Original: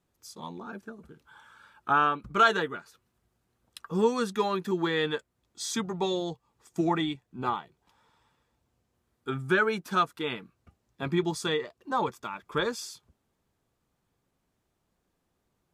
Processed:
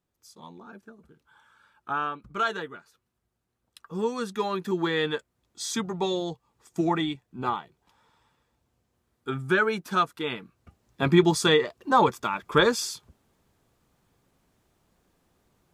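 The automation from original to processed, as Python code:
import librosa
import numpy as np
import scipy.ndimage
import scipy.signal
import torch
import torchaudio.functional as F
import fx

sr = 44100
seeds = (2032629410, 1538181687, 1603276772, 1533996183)

y = fx.gain(x, sr, db=fx.line((3.78, -5.5), (4.76, 1.5), (10.39, 1.5), (11.02, 8.5)))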